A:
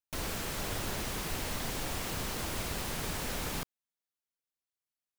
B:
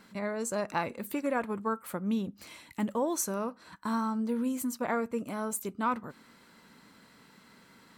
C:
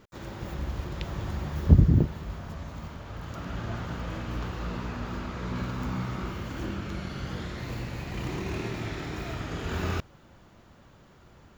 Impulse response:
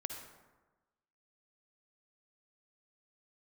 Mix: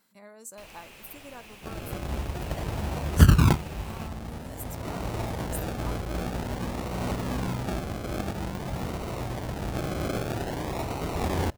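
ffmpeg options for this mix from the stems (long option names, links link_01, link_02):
-filter_complex "[0:a]equalizer=frequency=2600:width=2.5:gain=13,adelay=450,volume=-16dB[link_01];[1:a]aemphasis=mode=production:type=75fm,volume=-17dB[link_02];[2:a]highshelf=frequency=2000:gain=12,adynamicsmooth=sensitivity=7.5:basefreq=1300,acrusher=samples=37:mix=1:aa=0.000001:lfo=1:lforange=22.2:lforate=0.5,adelay=1500,volume=1dB[link_03];[link_01][link_02][link_03]amix=inputs=3:normalize=0,equalizer=frequency=750:width_type=o:width=1:gain=4.5"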